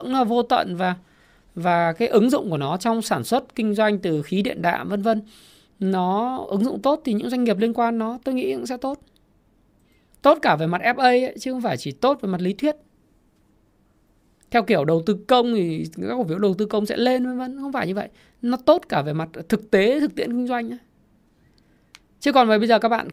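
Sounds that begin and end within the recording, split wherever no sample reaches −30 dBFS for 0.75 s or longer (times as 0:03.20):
0:10.24–0:12.72
0:14.52–0:20.75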